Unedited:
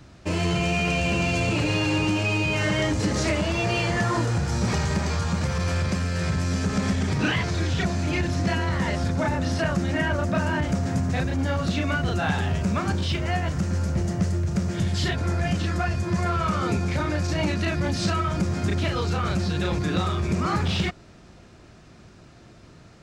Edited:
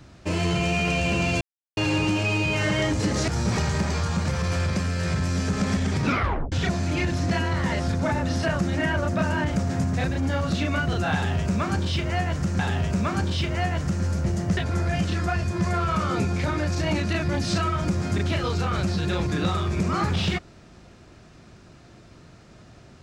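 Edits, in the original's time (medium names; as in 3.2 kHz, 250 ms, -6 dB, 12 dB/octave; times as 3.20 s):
1.41–1.77 s: mute
3.28–4.44 s: delete
7.22 s: tape stop 0.46 s
12.30–13.75 s: loop, 2 plays
14.28–15.09 s: delete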